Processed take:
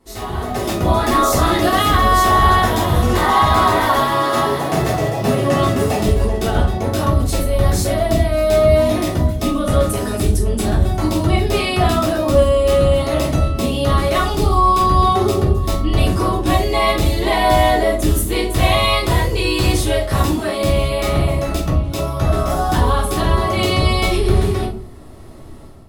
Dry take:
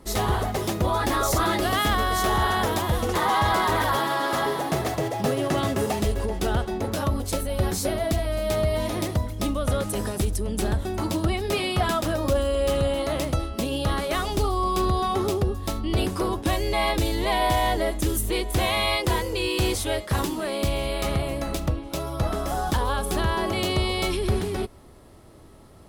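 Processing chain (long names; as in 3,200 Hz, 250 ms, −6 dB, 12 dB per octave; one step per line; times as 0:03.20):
automatic gain control gain up to 13 dB
in parallel at −11 dB: gain into a clipping stage and back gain 6.5 dB
on the sum: rectangular room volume 230 cubic metres, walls furnished, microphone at 3.4 metres
level −12.5 dB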